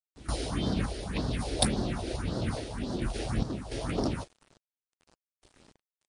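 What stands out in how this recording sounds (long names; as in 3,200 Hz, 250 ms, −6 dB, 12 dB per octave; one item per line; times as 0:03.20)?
phaser sweep stages 4, 1.8 Hz, lowest notch 170–2,400 Hz
sample-and-hold tremolo, depth 90%
a quantiser's noise floor 10 bits, dither none
MP3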